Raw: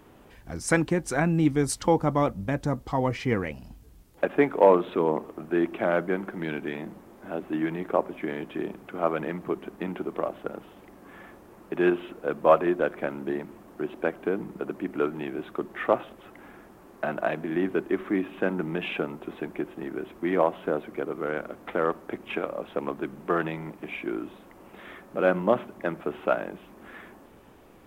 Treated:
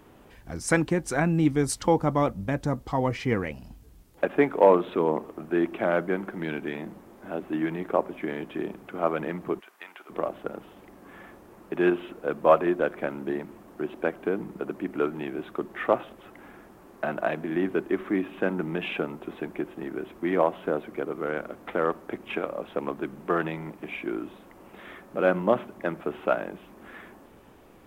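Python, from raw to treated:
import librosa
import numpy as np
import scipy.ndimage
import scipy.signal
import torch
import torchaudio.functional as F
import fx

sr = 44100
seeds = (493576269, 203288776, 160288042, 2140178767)

y = fx.highpass(x, sr, hz=1300.0, slope=12, at=(9.59, 10.09), fade=0.02)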